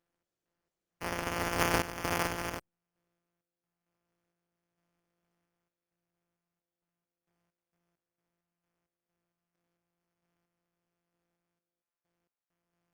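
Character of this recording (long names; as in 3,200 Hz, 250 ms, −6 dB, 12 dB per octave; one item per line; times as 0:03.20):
a buzz of ramps at a fixed pitch in blocks of 256 samples
sample-and-hold tremolo 4.4 Hz, depth 90%
aliases and images of a low sample rate 3,900 Hz, jitter 0%
Opus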